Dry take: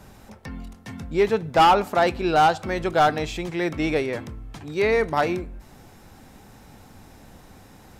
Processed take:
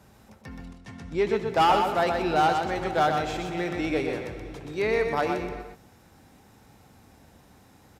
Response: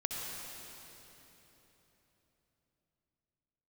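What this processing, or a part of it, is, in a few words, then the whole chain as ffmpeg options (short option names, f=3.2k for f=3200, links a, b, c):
keyed gated reverb: -filter_complex "[0:a]asplit=3[a][b][c];[1:a]atrim=start_sample=2205[d];[b][d]afir=irnorm=-1:irlink=0[e];[c]apad=whole_len=352707[f];[e][f]sidechaingate=range=-33dB:threshold=-39dB:ratio=16:detection=peak,volume=-9dB[g];[a][g]amix=inputs=2:normalize=0,asettb=1/sr,asplit=3[h][i][j];[h]atrim=end=0.644[k];[i]atrim=start=0.64:end=1.35,asetpts=PTS-STARTPTS,afade=t=in:d=0.004:c=qsin,afade=t=out:st=0.706:d=0.004:c=qsin,lowpass=8.4k[l];[j]atrim=start=1.346[m];[k][l]acrossfade=d=0.004:c1=hsin:c2=qsin[n];[n][m]acrossfade=d=0.004:c1=qsin:c2=hsin,highpass=52,aecho=1:1:125:0.531,volume=-7.5dB"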